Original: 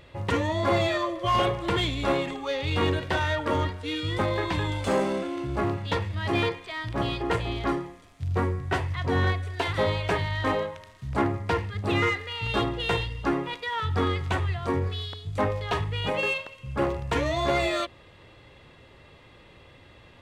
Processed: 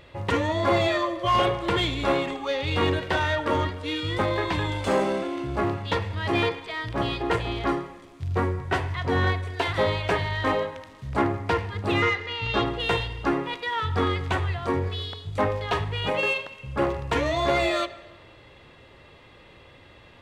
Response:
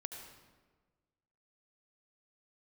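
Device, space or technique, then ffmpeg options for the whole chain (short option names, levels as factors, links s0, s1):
filtered reverb send: -filter_complex "[0:a]asplit=2[s0][s1];[s1]highpass=220,lowpass=6500[s2];[1:a]atrim=start_sample=2205[s3];[s2][s3]afir=irnorm=-1:irlink=0,volume=0.447[s4];[s0][s4]amix=inputs=2:normalize=0,asettb=1/sr,asplit=3[s5][s6][s7];[s5]atrim=end=12.024[s8];[s6]atrim=start=12.02:end=12.66,asetpts=PTS-STARTPTS,afade=t=in:d=0.004:c=qsin,afade=t=out:st=0.636:d=0.004:c=qsin,lowpass=f=6900:w=0.5412,lowpass=f=6900:w=1.3066[s9];[s7]atrim=start=12.656[s10];[s8][s9]acrossfade=d=0.004:c1=hsin:c2=qsin[s11];[s11][s10]acrossfade=d=0.004:c1=qsin:c2=hsin"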